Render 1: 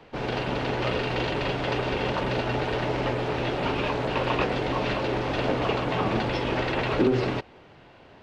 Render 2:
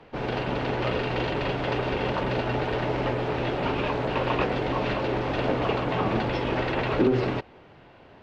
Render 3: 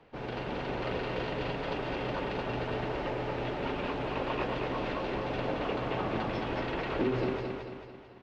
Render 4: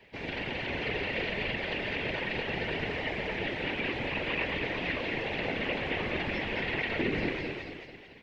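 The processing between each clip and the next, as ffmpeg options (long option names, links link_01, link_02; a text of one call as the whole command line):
ffmpeg -i in.wav -af "aemphasis=mode=reproduction:type=cd" out.wav
ffmpeg -i in.wav -af "aecho=1:1:221|442|663|884|1105|1326:0.631|0.303|0.145|0.0698|0.0335|0.0161,volume=-8.5dB" out.wav
ffmpeg -i in.wav -filter_complex "[0:a]highshelf=frequency=1600:width_type=q:width=3:gain=7,afftfilt=real='hypot(re,im)*cos(2*PI*random(0))':imag='hypot(re,im)*sin(2*PI*random(1))':win_size=512:overlap=0.75,acrossover=split=3500[link_01][link_02];[link_02]acompressor=threshold=-56dB:ratio=4:attack=1:release=60[link_03];[link_01][link_03]amix=inputs=2:normalize=0,volume=5dB" out.wav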